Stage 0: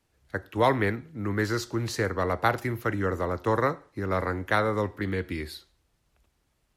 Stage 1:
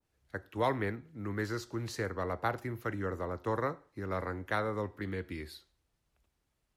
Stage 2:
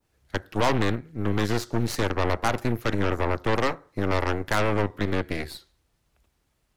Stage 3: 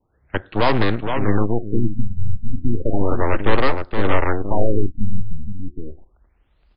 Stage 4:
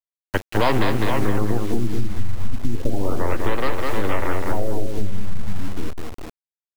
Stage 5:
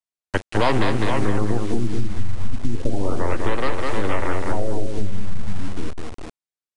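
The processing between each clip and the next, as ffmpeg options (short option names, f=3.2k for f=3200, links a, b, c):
-af "adynamicequalizer=threshold=0.0126:dfrequency=1700:dqfactor=0.7:tfrequency=1700:tqfactor=0.7:attack=5:release=100:ratio=0.375:range=3:mode=cutabove:tftype=highshelf,volume=-8dB"
-filter_complex "[0:a]asplit=2[a][b];[b]alimiter=level_in=4.5dB:limit=-24dB:level=0:latency=1:release=39,volume=-4.5dB,volume=-2dB[c];[a][c]amix=inputs=2:normalize=0,aeval=exprs='0.168*(cos(1*acos(clip(val(0)/0.168,-1,1)))-cos(1*PI/2))+0.0376*(cos(8*acos(clip(val(0)/0.168,-1,1)))-cos(8*PI/2))':c=same,volume=3.5dB"
-af "aecho=1:1:468:0.473,asubboost=boost=4:cutoff=52,afftfilt=real='re*lt(b*sr/1024,210*pow(5300/210,0.5+0.5*sin(2*PI*0.33*pts/sr)))':imag='im*lt(b*sr/1024,210*pow(5300/210,0.5+0.5*sin(2*PI*0.33*pts/sr)))':win_size=1024:overlap=0.75,volume=5dB"
-filter_complex "[0:a]asplit=2[a][b];[b]aecho=0:1:203|406|609:0.531|0.138|0.0359[c];[a][c]amix=inputs=2:normalize=0,acrusher=bits=5:mix=0:aa=0.000001,acompressor=threshold=-13dB:ratio=6,volume=1.5dB"
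-af "aresample=22050,aresample=44100"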